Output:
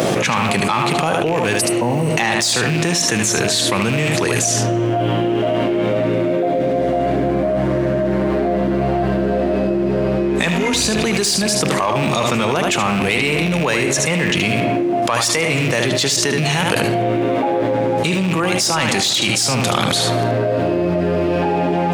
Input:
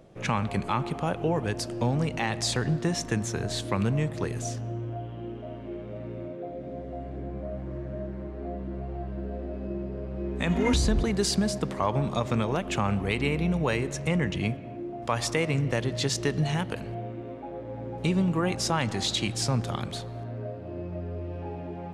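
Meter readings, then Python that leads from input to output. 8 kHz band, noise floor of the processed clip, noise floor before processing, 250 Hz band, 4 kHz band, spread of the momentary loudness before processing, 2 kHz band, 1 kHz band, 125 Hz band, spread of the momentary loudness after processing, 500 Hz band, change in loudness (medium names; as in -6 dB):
+16.5 dB, -18 dBFS, -39 dBFS, +11.5 dB, +14.5 dB, 12 LU, +15.5 dB, +13.5 dB, +7.5 dB, 3 LU, +14.5 dB, +12.5 dB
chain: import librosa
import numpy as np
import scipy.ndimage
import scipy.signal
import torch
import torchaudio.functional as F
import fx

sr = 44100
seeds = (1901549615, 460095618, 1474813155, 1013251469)

y = fx.rattle_buzz(x, sr, strikes_db=-28.0, level_db=-29.0)
y = fx.spec_repair(y, sr, seeds[0], start_s=1.63, length_s=0.46, low_hz=1100.0, high_hz=7900.0, source='after')
y = scipy.signal.sosfilt(scipy.signal.butter(2, 120.0, 'highpass', fs=sr, output='sos'), y)
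y = fx.tilt_eq(y, sr, slope=2.0)
y = y + 10.0 ** (-8.0 / 20.0) * np.pad(y, (int(75 * sr / 1000.0), 0))[:len(y)]
y = 10.0 ** (-17.5 / 20.0) * np.tanh(y / 10.0 ** (-17.5 / 20.0))
y = fx.env_flatten(y, sr, amount_pct=100)
y = y * librosa.db_to_amplitude(6.5)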